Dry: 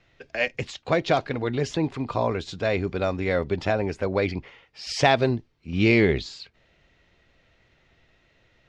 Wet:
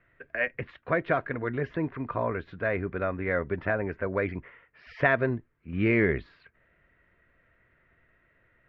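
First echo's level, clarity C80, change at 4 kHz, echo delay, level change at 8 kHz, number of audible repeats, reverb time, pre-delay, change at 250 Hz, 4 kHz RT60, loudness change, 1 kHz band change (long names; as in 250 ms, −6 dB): no echo audible, no reverb audible, −19.0 dB, no echo audible, below −35 dB, no echo audible, no reverb audible, no reverb audible, −5.0 dB, no reverb audible, −4.5 dB, −5.5 dB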